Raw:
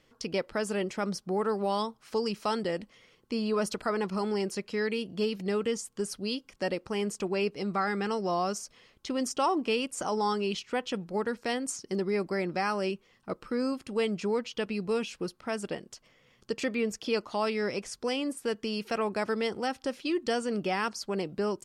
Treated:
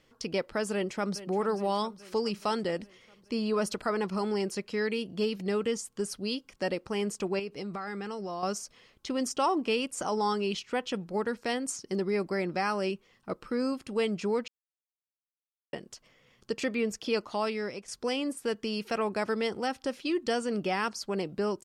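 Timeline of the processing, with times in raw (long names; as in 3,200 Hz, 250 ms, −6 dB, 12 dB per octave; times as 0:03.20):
0:00.72–0:01.26: delay throw 420 ms, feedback 65%, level −14.5 dB
0:07.39–0:08.43: downward compressor, threshold −33 dBFS
0:14.48–0:15.73: silence
0:17.17–0:17.88: fade out equal-power, to −11 dB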